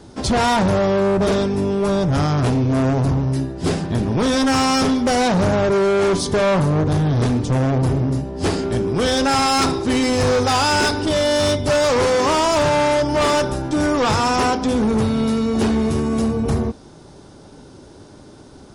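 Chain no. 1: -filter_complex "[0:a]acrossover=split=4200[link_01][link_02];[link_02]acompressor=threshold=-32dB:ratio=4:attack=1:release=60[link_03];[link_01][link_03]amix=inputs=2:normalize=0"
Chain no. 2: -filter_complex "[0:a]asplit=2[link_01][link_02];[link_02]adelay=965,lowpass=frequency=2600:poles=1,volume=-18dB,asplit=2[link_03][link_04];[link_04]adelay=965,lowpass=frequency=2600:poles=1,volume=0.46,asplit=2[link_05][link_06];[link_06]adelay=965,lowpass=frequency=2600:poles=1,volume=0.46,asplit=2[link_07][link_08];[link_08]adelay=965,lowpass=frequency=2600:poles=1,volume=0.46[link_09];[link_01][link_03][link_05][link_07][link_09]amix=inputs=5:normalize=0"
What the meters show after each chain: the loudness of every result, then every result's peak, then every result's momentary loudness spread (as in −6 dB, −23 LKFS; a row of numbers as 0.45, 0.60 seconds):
−18.5, −18.0 LKFS; −12.5, −12.0 dBFS; 4, 6 LU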